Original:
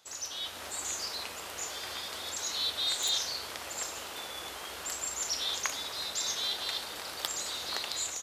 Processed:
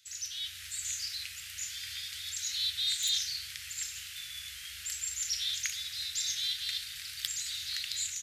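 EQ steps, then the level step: inverse Chebyshev band-stop 270–910 Hz, stop band 50 dB; 0.0 dB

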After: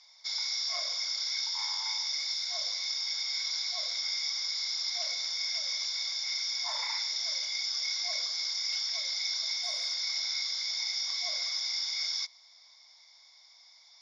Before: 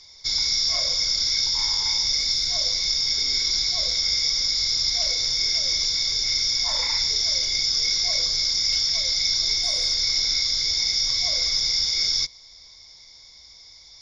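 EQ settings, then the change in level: steep high-pass 660 Hz 36 dB/octave; treble shelf 3.7 kHz -10.5 dB; -3.5 dB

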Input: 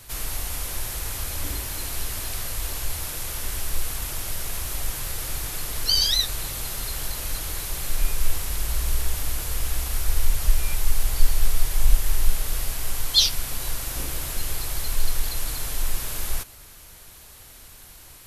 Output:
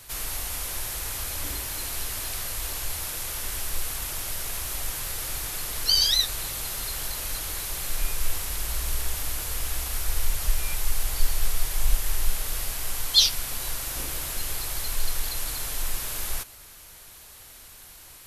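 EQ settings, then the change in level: bass shelf 380 Hz -5.5 dB; 0.0 dB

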